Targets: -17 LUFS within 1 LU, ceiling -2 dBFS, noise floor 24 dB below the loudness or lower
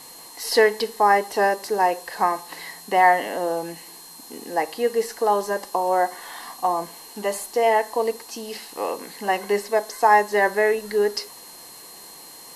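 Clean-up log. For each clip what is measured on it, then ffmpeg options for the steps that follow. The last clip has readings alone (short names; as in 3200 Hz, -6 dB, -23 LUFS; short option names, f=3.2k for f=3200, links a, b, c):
steady tone 4200 Hz; tone level -47 dBFS; noise floor -43 dBFS; noise floor target -46 dBFS; loudness -22.0 LUFS; peak -5.0 dBFS; loudness target -17.0 LUFS
-> -af "bandreject=f=4.2k:w=30"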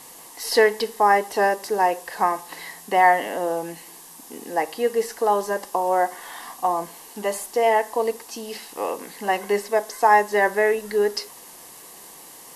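steady tone none; noise floor -44 dBFS; noise floor target -46 dBFS
-> -af "afftdn=nr=6:nf=-44"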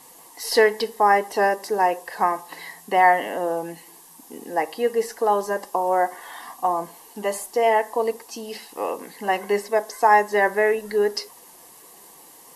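noise floor -48 dBFS; loudness -22.0 LUFS; peak -5.0 dBFS; loudness target -17.0 LUFS
-> -af "volume=5dB,alimiter=limit=-2dB:level=0:latency=1"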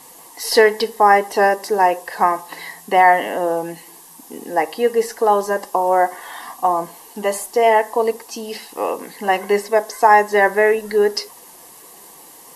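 loudness -17.5 LUFS; peak -2.0 dBFS; noise floor -43 dBFS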